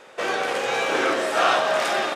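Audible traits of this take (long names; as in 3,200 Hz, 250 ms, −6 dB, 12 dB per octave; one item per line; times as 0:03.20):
background noise floor −47 dBFS
spectral slope −2.0 dB per octave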